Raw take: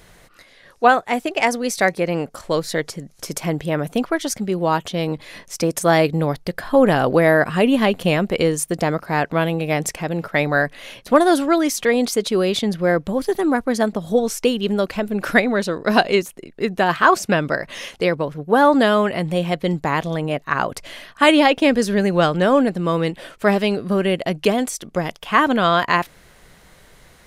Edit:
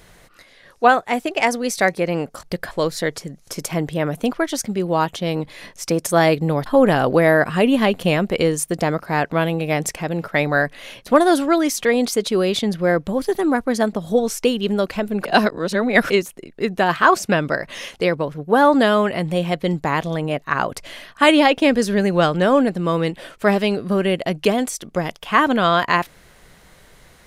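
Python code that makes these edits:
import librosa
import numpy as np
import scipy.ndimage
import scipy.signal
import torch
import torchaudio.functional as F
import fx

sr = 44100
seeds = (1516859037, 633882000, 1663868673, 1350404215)

y = fx.edit(x, sr, fx.move(start_s=6.38, length_s=0.28, to_s=2.43),
    fx.reverse_span(start_s=15.25, length_s=0.85), tone=tone)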